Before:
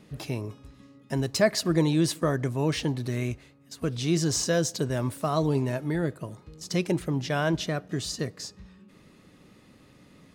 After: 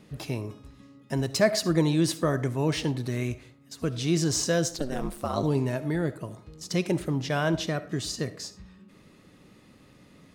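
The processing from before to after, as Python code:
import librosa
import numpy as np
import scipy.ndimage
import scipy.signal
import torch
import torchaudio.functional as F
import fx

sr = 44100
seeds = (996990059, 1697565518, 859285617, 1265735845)

y = fx.ring_mod(x, sr, carrier_hz=fx.line((4.68, 180.0), (5.42, 47.0)), at=(4.68, 5.42), fade=0.02)
y = fx.rev_freeverb(y, sr, rt60_s=0.46, hf_ratio=0.5, predelay_ms=25, drr_db=14.5)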